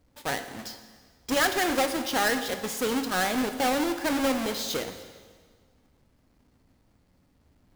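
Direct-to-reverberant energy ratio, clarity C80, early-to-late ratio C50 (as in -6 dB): 8.0 dB, 11.0 dB, 9.5 dB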